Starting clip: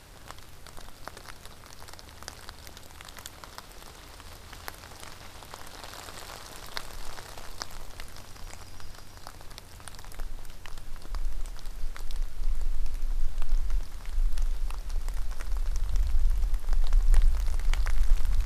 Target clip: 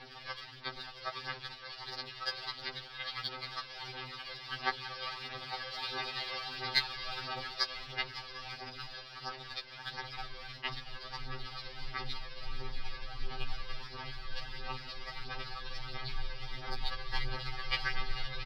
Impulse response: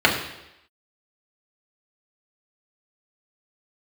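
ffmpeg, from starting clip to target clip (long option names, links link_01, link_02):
-af "highpass=46,tiltshelf=frequency=1300:gain=-4.5,aecho=1:1:5.3:0.94,aresample=11025,aeval=exprs='val(0)*gte(abs(val(0)),0.00473)':channel_layout=same,aresample=44100,aphaser=in_gain=1:out_gain=1:delay=1.9:decay=0.59:speed=1.5:type=sinusoidal,afftfilt=real='re*2.45*eq(mod(b,6),0)':imag='im*2.45*eq(mod(b,6),0)':win_size=2048:overlap=0.75,volume=3dB"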